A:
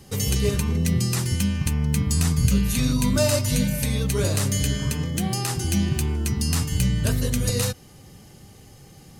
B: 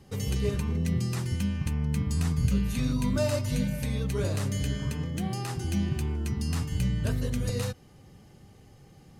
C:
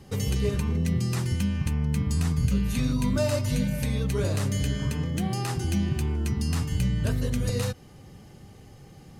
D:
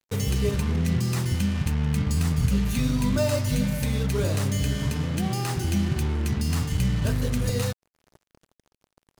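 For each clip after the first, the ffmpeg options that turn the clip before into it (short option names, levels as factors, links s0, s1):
-af "highshelf=f=4000:g=-10.5,volume=0.531"
-af "acompressor=threshold=0.0282:ratio=1.5,volume=1.78"
-af "acrusher=bits=5:mix=0:aa=0.5,volume=1.19"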